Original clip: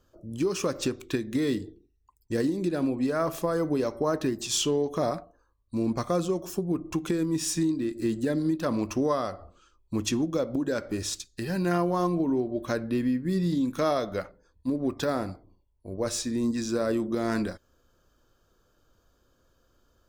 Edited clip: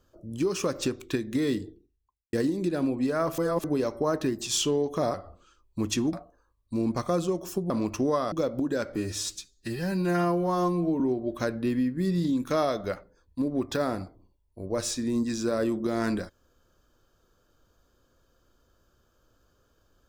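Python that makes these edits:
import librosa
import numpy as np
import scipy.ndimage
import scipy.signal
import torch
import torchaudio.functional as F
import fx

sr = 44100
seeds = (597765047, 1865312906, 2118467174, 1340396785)

y = fx.studio_fade_out(x, sr, start_s=1.63, length_s=0.7)
y = fx.edit(y, sr, fx.reverse_span(start_s=3.38, length_s=0.26),
    fx.cut(start_s=6.71, length_s=1.96),
    fx.move(start_s=9.29, length_s=0.99, to_s=5.14),
    fx.stretch_span(start_s=10.92, length_s=1.36, factor=1.5), tone=tone)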